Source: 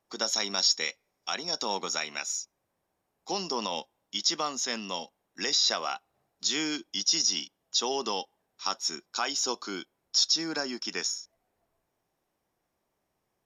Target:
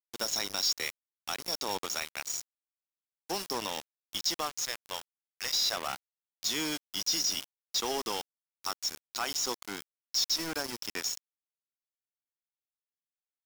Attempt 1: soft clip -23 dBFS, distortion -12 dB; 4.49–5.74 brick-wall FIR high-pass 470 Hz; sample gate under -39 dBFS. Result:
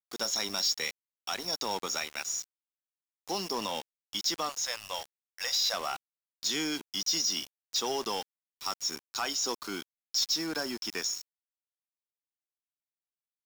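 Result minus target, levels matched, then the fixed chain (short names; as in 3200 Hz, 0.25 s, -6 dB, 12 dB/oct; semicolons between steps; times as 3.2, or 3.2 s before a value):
sample gate: distortion -9 dB
soft clip -23 dBFS, distortion -12 dB; 4.49–5.74 brick-wall FIR high-pass 470 Hz; sample gate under -31.5 dBFS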